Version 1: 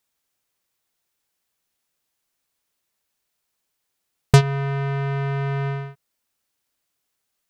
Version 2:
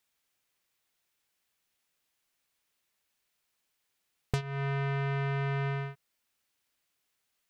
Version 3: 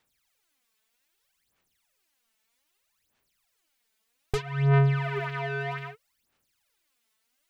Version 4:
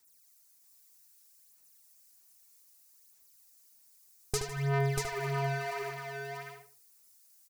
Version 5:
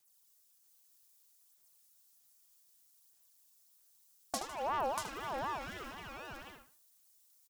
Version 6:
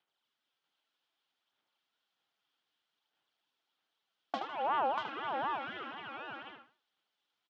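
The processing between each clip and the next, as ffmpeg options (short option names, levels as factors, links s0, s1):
-af "equalizer=f=2400:w=0.84:g=4.5,acompressor=threshold=0.0562:ratio=12,volume=0.668"
-af "aphaser=in_gain=1:out_gain=1:delay=4.6:decay=0.77:speed=0.63:type=sinusoidal"
-filter_complex "[0:a]asplit=2[s0][s1];[s1]aecho=0:1:155|638:0.15|0.668[s2];[s0][s2]amix=inputs=2:normalize=0,aexciter=amount=5.7:drive=6.4:freq=4600,asplit=2[s3][s4];[s4]adelay=75,lowpass=f=4400:p=1,volume=0.562,asplit=2[s5][s6];[s6]adelay=75,lowpass=f=4400:p=1,volume=0.24,asplit=2[s7][s8];[s8]adelay=75,lowpass=f=4400:p=1,volume=0.24[s9];[s5][s7][s9]amix=inputs=3:normalize=0[s10];[s3][s10]amix=inputs=2:normalize=0,volume=0.501"
-filter_complex "[0:a]acrossover=split=360|3000[s0][s1][s2];[s1]acompressor=threshold=0.00794:ratio=2[s3];[s0][s3][s2]amix=inputs=3:normalize=0,asplit=2[s4][s5];[s5]adelay=30,volume=0.211[s6];[s4][s6]amix=inputs=2:normalize=0,aeval=exprs='val(0)*sin(2*PI*860*n/s+860*0.25/4*sin(2*PI*4*n/s))':c=same,volume=0.75"
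-af "highpass=f=130:w=0.5412,highpass=f=130:w=1.3066,equalizer=f=170:t=q:w=4:g=-6,equalizer=f=310:t=q:w=4:g=3,equalizer=f=820:t=q:w=4:g=5,equalizer=f=1400:t=q:w=4:g=6,equalizer=f=3200:t=q:w=4:g=7,lowpass=f=3400:w=0.5412,lowpass=f=3400:w=1.3066"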